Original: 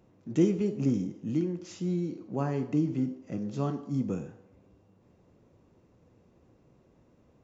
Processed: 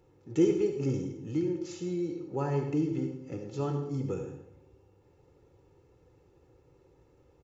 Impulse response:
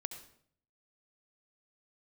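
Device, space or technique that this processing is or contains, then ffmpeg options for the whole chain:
microphone above a desk: -filter_complex "[0:a]aecho=1:1:2.3:0.77[a];[1:a]atrim=start_sample=2205[b];[a][b]afir=irnorm=-1:irlink=0"

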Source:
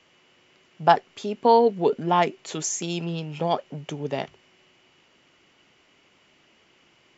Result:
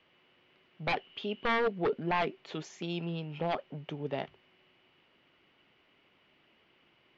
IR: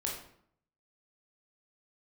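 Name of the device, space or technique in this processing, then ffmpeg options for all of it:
synthesiser wavefolder: -filter_complex "[0:a]asettb=1/sr,asplit=3[a][b][c];[a]atrim=end=0.934[d];[b]atrim=start=0.93:end=1.48,asetpts=PTS-STARTPTS,afade=t=in:d=0.004:c=qsin,afade=t=out:st=0.546:d=0.004:c=qsin,equalizer=f=3k:t=o:w=0.35:g=13.5[e];[c]atrim=start=1.476[f];[d][e]acrossfade=d=0.004:c1=hsin:c2=qsin[g];[g][f]acrossfade=d=0.004:c1=qsin:c2=hsin,aeval=exprs='0.158*(abs(mod(val(0)/0.158+3,4)-2)-1)':c=same,lowpass=f=3.9k:w=0.5412,lowpass=f=3.9k:w=1.3066,volume=-6.5dB"

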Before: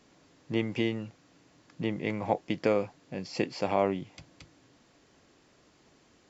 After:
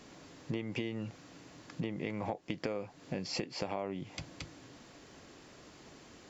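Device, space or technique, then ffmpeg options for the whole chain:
serial compression, peaks first: -af "acompressor=threshold=-37dB:ratio=4,acompressor=threshold=-44dB:ratio=2,volume=7.5dB"

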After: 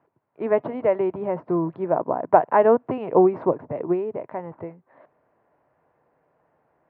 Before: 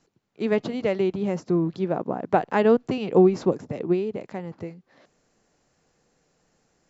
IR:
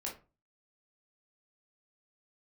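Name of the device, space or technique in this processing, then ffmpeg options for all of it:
bass cabinet: -af "highpass=86,equalizer=f=200:t=q:w=4:g=-9,equalizer=f=630:t=q:w=4:g=8,equalizer=f=970:t=q:w=4:g=10,lowpass=f=2k:w=0.5412,lowpass=f=2k:w=1.3066"

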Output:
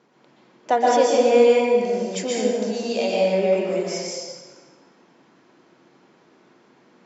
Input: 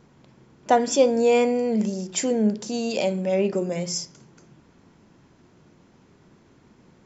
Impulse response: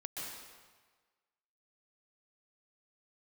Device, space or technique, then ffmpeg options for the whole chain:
supermarket ceiling speaker: -filter_complex "[0:a]highpass=310,lowpass=5.6k[a];[1:a]atrim=start_sample=2205[b];[a][b]afir=irnorm=-1:irlink=0,volume=4dB"

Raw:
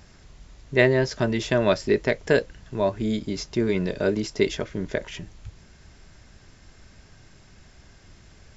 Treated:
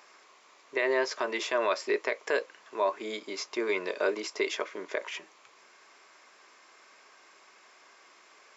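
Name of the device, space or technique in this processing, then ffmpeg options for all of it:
laptop speaker: -af "highpass=f=380:w=0.5412,highpass=f=380:w=1.3066,equalizer=f=1.1k:t=o:w=0.46:g=12,equalizer=f=2.3k:t=o:w=0.39:g=6.5,alimiter=limit=-14dB:level=0:latency=1:release=54,volume=-3dB"

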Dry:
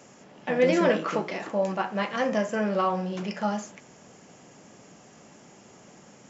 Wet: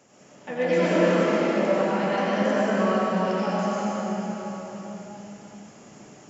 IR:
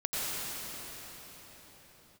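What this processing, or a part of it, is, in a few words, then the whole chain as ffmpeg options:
cathedral: -filter_complex "[1:a]atrim=start_sample=2205[a];[0:a][a]afir=irnorm=-1:irlink=0,volume=-5.5dB"

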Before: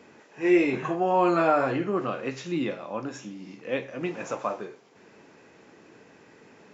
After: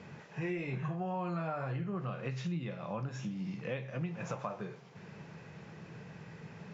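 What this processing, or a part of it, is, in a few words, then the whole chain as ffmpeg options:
jukebox: -af "lowpass=5.7k,lowshelf=f=210:t=q:w=3:g=9,acompressor=threshold=-36dB:ratio=6,volume=1dB"

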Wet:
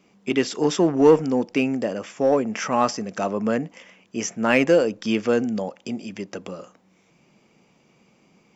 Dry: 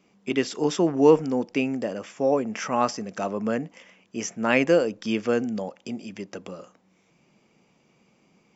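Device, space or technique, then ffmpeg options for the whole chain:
parallel distortion: -filter_complex "[0:a]asplit=2[a][b];[b]asoftclip=type=hard:threshold=-18dB,volume=-6dB[c];[a][c]amix=inputs=2:normalize=0"

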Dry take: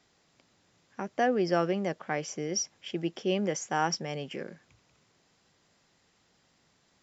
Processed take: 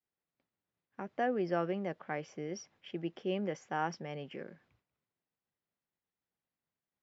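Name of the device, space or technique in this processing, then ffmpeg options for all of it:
hearing-loss simulation: -af "lowpass=2.9k,agate=range=-33dB:threshold=-57dB:ratio=3:detection=peak,volume=-6dB"

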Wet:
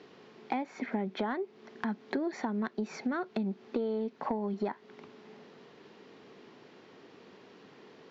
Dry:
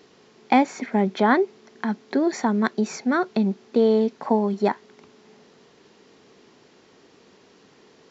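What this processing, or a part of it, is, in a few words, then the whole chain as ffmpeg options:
AM radio: -af "highpass=100,lowpass=3.6k,acompressor=threshold=-29dB:ratio=10,asoftclip=type=tanh:threshold=-18.5dB"

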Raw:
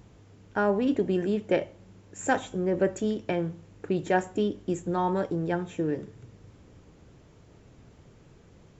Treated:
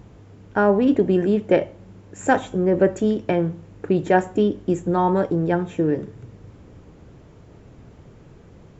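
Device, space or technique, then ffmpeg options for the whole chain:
behind a face mask: -af "highshelf=f=2.5k:g=-8,volume=8dB"

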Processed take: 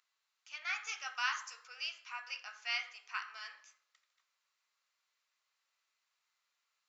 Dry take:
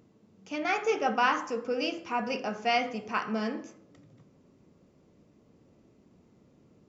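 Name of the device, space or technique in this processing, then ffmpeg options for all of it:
headphones lying on a table: -filter_complex "[0:a]highpass=f=1.3k:w=0.5412,highpass=f=1.3k:w=1.3066,equalizer=f=4.1k:t=o:w=0.27:g=6,asettb=1/sr,asplit=3[a][b][c];[a]atrim=end=0.854[d];[b]atrim=start=0.85:end=1.68,asetpts=PTS-STARTPTS,afade=t=in:d=0.004:c=qsin,afade=t=out:st=0.826:d=0.004:c=qsin,bass=f=250:g=0,treble=f=4k:g=7[e];[c]atrim=start=1.676[f];[d][e]acrossfade=d=0.004:c1=hsin:c2=qsin[g];[g][f]acrossfade=d=0.004:c1=qsin:c2=hsin,volume=-5.5dB"

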